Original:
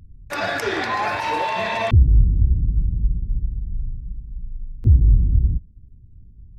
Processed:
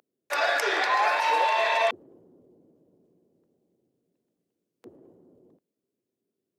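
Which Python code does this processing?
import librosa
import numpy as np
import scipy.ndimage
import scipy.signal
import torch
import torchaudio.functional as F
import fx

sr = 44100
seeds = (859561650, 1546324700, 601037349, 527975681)

y = scipy.signal.sosfilt(scipy.signal.butter(4, 460.0, 'highpass', fs=sr, output='sos'), x)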